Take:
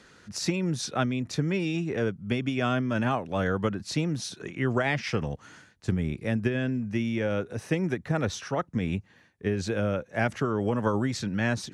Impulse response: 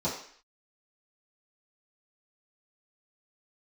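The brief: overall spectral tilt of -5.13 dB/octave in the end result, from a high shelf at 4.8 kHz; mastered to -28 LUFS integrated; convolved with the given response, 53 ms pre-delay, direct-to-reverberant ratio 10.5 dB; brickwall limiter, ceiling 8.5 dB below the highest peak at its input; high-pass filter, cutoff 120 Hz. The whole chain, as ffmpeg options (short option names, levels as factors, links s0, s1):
-filter_complex "[0:a]highpass=120,highshelf=f=4800:g=6,alimiter=limit=0.0944:level=0:latency=1,asplit=2[s0][s1];[1:a]atrim=start_sample=2205,adelay=53[s2];[s1][s2]afir=irnorm=-1:irlink=0,volume=0.119[s3];[s0][s3]amix=inputs=2:normalize=0,volume=1.26"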